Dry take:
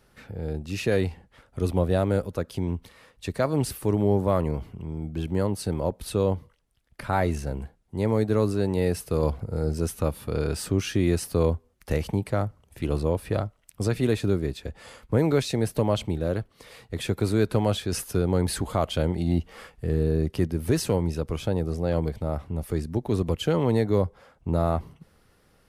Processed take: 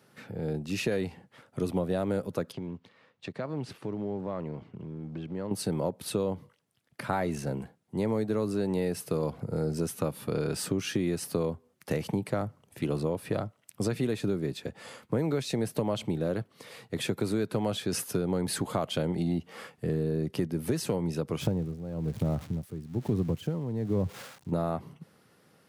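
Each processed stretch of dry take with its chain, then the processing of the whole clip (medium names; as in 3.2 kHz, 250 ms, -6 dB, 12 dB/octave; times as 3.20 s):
2.52–5.51 s: companding laws mixed up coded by A + low-pass 3.9 kHz + compression 2.5:1, threshold -35 dBFS
21.41–24.52 s: zero-crossing glitches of -22 dBFS + RIAA curve playback + logarithmic tremolo 1.1 Hz, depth 19 dB
whole clip: high-pass 130 Hz 24 dB/octave; bass shelf 180 Hz +4.5 dB; compression, threshold -25 dBFS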